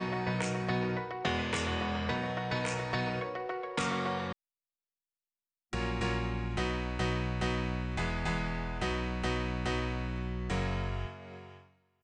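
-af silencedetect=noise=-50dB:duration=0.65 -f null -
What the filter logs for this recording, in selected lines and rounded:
silence_start: 4.33
silence_end: 5.73 | silence_duration: 1.40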